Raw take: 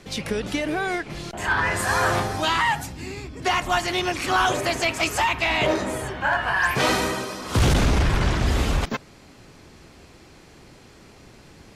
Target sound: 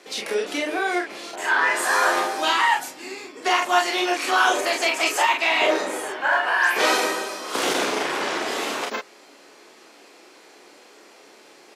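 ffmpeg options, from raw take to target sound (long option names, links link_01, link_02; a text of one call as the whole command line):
ffmpeg -i in.wav -af "highpass=frequency=330:width=0.5412,highpass=frequency=330:width=1.3066,aecho=1:1:31|45:0.596|0.562" out.wav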